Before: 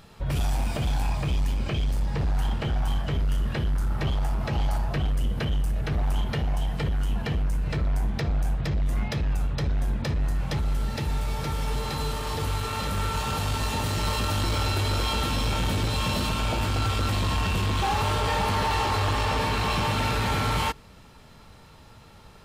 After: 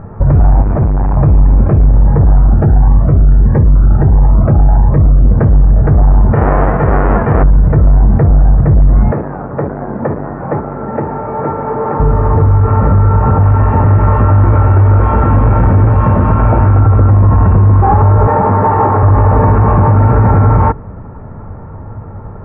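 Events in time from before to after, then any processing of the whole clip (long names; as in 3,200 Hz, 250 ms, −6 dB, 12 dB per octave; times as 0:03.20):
0:00.62–0:01.17: hard clipping −31 dBFS
0:02.38–0:05.25: phaser whose notches keep moving one way rising 1.5 Hz
0:06.34–0:07.42: spectral envelope flattened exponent 0.3
0:09.12–0:12.00: band-pass filter 300–2,700 Hz
0:13.43–0:16.80: tilt shelving filter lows −4.5 dB, about 1,300 Hz
0:18.27–0:19.03: band-pass filter 150–3,300 Hz
whole clip: Bessel low-pass filter 890 Hz, order 8; parametric band 100 Hz +8 dB 0.37 octaves; boost into a limiter +22.5 dB; level −1 dB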